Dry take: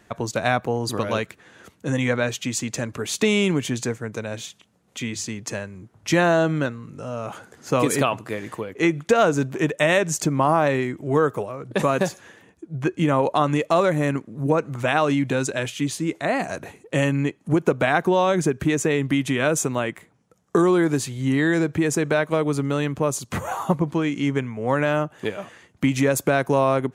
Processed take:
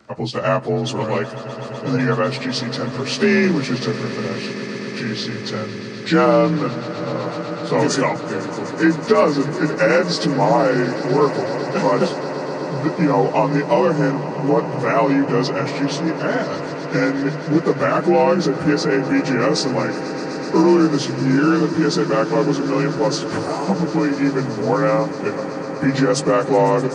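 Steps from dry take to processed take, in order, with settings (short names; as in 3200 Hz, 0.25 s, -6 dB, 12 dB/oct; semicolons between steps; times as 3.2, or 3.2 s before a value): inharmonic rescaling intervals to 88%; notches 50/100/150 Hz; swelling echo 0.125 s, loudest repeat 8, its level -18 dB; gain +5 dB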